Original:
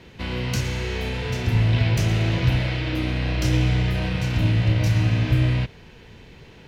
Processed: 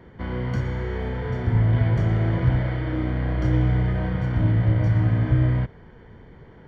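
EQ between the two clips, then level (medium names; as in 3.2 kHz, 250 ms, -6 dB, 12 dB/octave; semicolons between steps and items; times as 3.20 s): Savitzky-Golay filter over 41 samples; 0.0 dB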